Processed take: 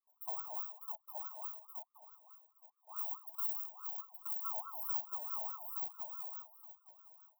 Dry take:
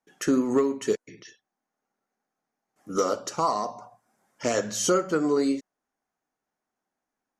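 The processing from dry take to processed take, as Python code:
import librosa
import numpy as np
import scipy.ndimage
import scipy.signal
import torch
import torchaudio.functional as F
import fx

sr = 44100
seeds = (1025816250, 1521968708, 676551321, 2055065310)

y = fx.bit_reversed(x, sr, seeds[0], block=32)
y = scipy.signal.sosfilt(scipy.signal.cheby2(4, 70, [420.0, 6000.0], 'bandstop', fs=sr, output='sos'), y)
y = fx.high_shelf(y, sr, hz=9300.0, db=-10.5)
y = y + 0.74 * np.pad(y, (int(1.0 * sr / 1000.0), 0))[:len(y)]
y = fx.echo_feedback(y, sr, ms=871, feedback_pct=18, wet_db=-3)
y = fx.ring_lfo(y, sr, carrier_hz=990.0, swing_pct=25, hz=4.7)
y = y * librosa.db_to_amplitude(2.0)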